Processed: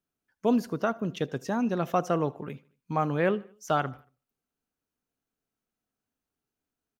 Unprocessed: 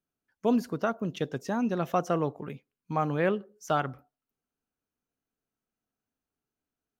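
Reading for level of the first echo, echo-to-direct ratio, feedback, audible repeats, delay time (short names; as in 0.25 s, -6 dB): -23.5 dB, -22.5 dB, 49%, 2, 76 ms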